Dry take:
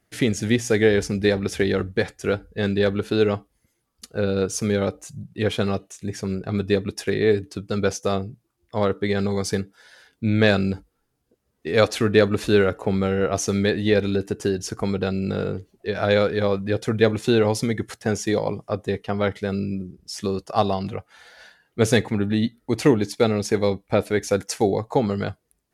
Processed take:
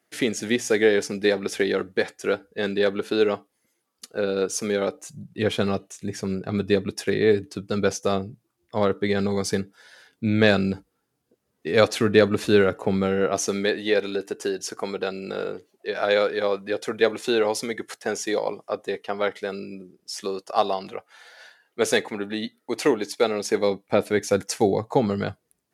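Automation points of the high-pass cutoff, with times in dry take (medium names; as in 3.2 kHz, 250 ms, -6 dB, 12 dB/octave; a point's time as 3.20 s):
4.89 s 270 Hz
5.35 s 120 Hz
12.96 s 120 Hz
13.82 s 380 Hz
23.26 s 380 Hz
24.34 s 110 Hz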